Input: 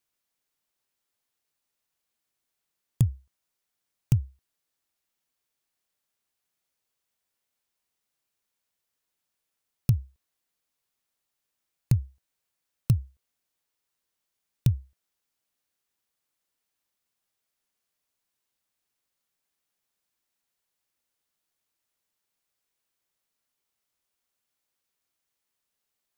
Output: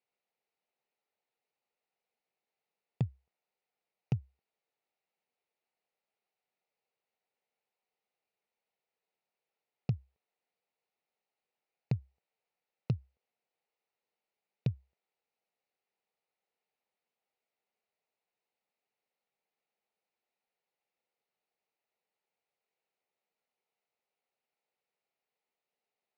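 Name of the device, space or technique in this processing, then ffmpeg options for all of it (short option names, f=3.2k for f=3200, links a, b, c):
kitchen radio: -af "highpass=210,equalizer=f=290:t=q:w=4:g=-9,equalizer=f=460:t=q:w=4:g=5,equalizer=f=780:t=q:w=4:g=5,equalizer=f=1.1k:t=q:w=4:g=-7,equalizer=f=1.6k:t=q:w=4:g=-9,equalizer=f=3.3k:t=q:w=4:g=-10,lowpass=f=3.6k:w=0.5412,lowpass=f=3.6k:w=1.3066"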